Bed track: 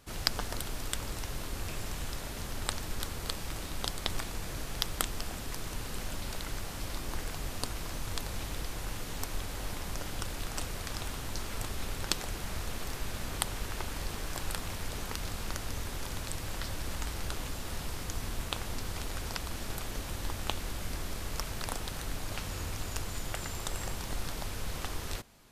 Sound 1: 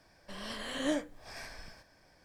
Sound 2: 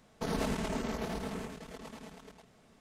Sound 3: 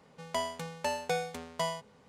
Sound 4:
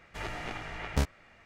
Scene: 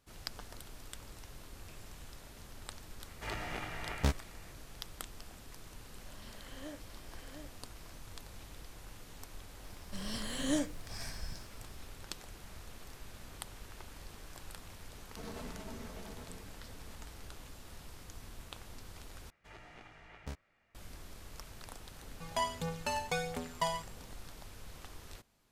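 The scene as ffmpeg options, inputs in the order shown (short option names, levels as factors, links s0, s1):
-filter_complex "[4:a]asplit=2[s0][s1];[1:a]asplit=2[s2][s3];[0:a]volume=0.224[s4];[s2]aecho=1:1:710:0.501[s5];[s3]bass=f=250:g=14,treble=f=4000:g=11[s6];[2:a]asplit=2[s7][s8];[s8]adelay=10.1,afreqshift=2.4[s9];[s7][s9]amix=inputs=2:normalize=1[s10];[3:a]aphaser=in_gain=1:out_gain=1:delay=1.3:decay=0.55:speed=1.5:type=triangular[s11];[s4]asplit=2[s12][s13];[s12]atrim=end=19.304[s14];[s1]atrim=end=1.45,asetpts=PTS-STARTPTS,volume=0.158[s15];[s13]atrim=start=20.746[s16];[s0]atrim=end=1.45,asetpts=PTS-STARTPTS,volume=0.75,afade=t=in:d=0.004:c=hsin,afade=t=out:st=1.446:d=0.004:c=hsin,adelay=3070[s17];[s5]atrim=end=2.24,asetpts=PTS-STARTPTS,volume=0.168,afade=t=in:d=0.004:c=hsin,afade=t=out:st=2.236:d=0.004:c=hsin,adelay=254457S[s18];[s6]atrim=end=2.24,asetpts=PTS-STARTPTS,volume=0.596,afade=t=in:d=0.004:c=hsin,afade=t=out:st=2.236:d=0.004:c=hsin,adelay=9640[s19];[s10]atrim=end=2.8,asetpts=PTS-STARTPTS,volume=0.335,afade=t=in:d=0.004:c=hsin,afade=t=out:st=2.796:d=0.004:c=hsin,adelay=14950[s20];[s11]atrim=end=2.08,asetpts=PTS-STARTPTS,volume=0.75,afade=t=in:d=0.004:c=hsin,afade=t=out:st=2.076:d=0.004:c=hsin,adelay=22020[s21];[s14][s15]acrossfade=d=0.004:c1=hsin:c2=hsin[s22];[s22][s16]acrossfade=d=0.004:c1=hsin:c2=hsin[s23];[s23][s17][s18][s19][s20][s21]amix=inputs=6:normalize=0"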